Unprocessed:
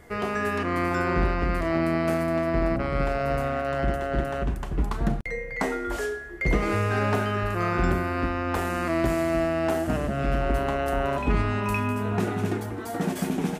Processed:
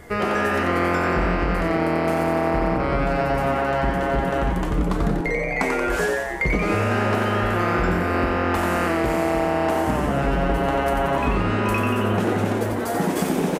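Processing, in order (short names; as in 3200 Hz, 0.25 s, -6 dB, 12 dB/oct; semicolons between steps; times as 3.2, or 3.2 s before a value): compressor, threshold -26 dBFS, peak gain reduction 8.5 dB; on a send: frequency-shifting echo 90 ms, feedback 60%, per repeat +130 Hz, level -5 dB; on the sum: gain +7 dB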